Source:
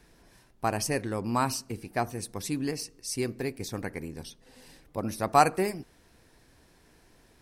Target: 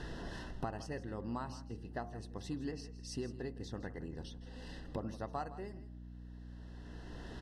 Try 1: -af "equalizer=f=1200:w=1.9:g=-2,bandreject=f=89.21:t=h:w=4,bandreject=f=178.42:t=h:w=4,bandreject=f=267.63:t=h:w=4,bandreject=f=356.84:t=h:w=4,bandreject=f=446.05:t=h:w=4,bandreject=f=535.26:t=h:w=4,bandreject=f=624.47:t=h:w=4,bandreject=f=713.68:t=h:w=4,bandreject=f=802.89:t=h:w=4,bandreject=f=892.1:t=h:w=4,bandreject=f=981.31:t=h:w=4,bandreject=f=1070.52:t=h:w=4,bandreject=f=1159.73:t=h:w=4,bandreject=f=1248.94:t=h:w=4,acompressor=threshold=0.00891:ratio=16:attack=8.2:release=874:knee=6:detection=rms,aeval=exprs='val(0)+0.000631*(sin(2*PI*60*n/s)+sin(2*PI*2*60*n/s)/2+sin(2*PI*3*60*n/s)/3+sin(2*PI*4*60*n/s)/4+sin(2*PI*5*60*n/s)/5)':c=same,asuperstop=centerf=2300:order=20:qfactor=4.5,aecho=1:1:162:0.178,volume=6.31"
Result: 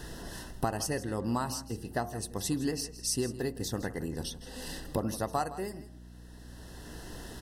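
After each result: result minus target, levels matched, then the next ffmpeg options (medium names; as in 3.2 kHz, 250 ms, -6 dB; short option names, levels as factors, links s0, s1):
compression: peak gain reduction -9 dB; 4 kHz band +3.0 dB
-af "equalizer=f=1200:w=1.9:g=-2,bandreject=f=89.21:t=h:w=4,bandreject=f=178.42:t=h:w=4,bandreject=f=267.63:t=h:w=4,bandreject=f=356.84:t=h:w=4,bandreject=f=446.05:t=h:w=4,bandreject=f=535.26:t=h:w=4,bandreject=f=624.47:t=h:w=4,bandreject=f=713.68:t=h:w=4,bandreject=f=802.89:t=h:w=4,bandreject=f=892.1:t=h:w=4,bandreject=f=981.31:t=h:w=4,bandreject=f=1070.52:t=h:w=4,bandreject=f=1159.73:t=h:w=4,bandreject=f=1248.94:t=h:w=4,acompressor=threshold=0.00282:ratio=16:attack=8.2:release=874:knee=6:detection=rms,aeval=exprs='val(0)+0.000631*(sin(2*PI*60*n/s)+sin(2*PI*2*60*n/s)/2+sin(2*PI*3*60*n/s)/3+sin(2*PI*4*60*n/s)/4+sin(2*PI*5*60*n/s)/5)':c=same,asuperstop=centerf=2300:order=20:qfactor=4.5,aecho=1:1:162:0.178,volume=6.31"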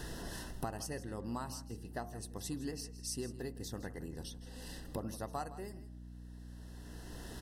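4 kHz band +3.5 dB
-af "lowpass=3800,equalizer=f=1200:w=1.9:g=-2,bandreject=f=89.21:t=h:w=4,bandreject=f=178.42:t=h:w=4,bandreject=f=267.63:t=h:w=4,bandreject=f=356.84:t=h:w=4,bandreject=f=446.05:t=h:w=4,bandreject=f=535.26:t=h:w=4,bandreject=f=624.47:t=h:w=4,bandreject=f=713.68:t=h:w=4,bandreject=f=802.89:t=h:w=4,bandreject=f=892.1:t=h:w=4,bandreject=f=981.31:t=h:w=4,bandreject=f=1070.52:t=h:w=4,bandreject=f=1159.73:t=h:w=4,bandreject=f=1248.94:t=h:w=4,acompressor=threshold=0.00282:ratio=16:attack=8.2:release=874:knee=6:detection=rms,aeval=exprs='val(0)+0.000631*(sin(2*PI*60*n/s)+sin(2*PI*2*60*n/s)/2+sin(2*PI*3*60*n/s)/3+sin(2*PI*4*60*n/s)/4+sin(2*PI*5*60*n/s)/5)':c=same,asuperstop=centerf=2300:order=20:qfactor=4.5,aecho=1:1:162:0.178,volume=6.31"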